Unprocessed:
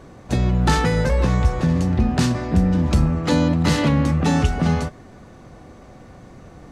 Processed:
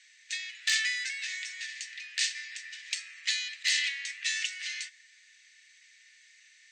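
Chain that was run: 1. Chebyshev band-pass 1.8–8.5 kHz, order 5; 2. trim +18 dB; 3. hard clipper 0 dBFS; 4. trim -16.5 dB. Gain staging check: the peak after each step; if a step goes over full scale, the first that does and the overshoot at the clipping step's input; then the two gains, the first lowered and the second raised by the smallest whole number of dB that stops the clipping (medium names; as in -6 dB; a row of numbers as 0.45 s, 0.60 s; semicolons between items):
-14.0 dBFS, +4.0 dBFS, 0.0 dBFS, -16.5 dBFS; step 2, 4.0 dB; step 2 +14 dB, step 4 -12.5 dB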